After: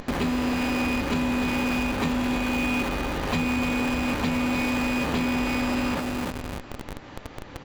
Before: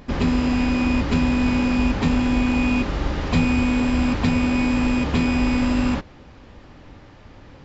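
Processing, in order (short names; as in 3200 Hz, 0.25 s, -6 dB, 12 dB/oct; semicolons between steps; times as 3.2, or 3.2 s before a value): feedback echo 0.301 s, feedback 32%, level -10 dB; in parallel at -8.5 dB: Schmitt trigger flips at -35 dBFS; on the sum: compressor 2:1, threshold -34 dBFS, peak gain reduction 11.5 dB; low shelf 170 Hz -10.5 dB; notch 5200 Hz, Q 13; gain +6.5 dB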